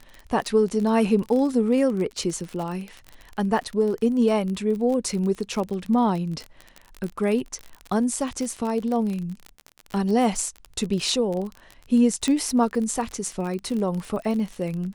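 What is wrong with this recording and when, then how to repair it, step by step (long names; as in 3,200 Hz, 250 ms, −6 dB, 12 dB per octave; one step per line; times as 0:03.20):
surface crackle 35 per second −28 dBFS
0:12.28: click −12 dBFS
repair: click removal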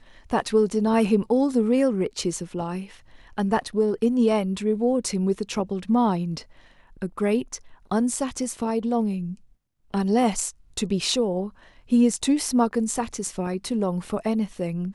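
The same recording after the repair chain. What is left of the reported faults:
none of them is left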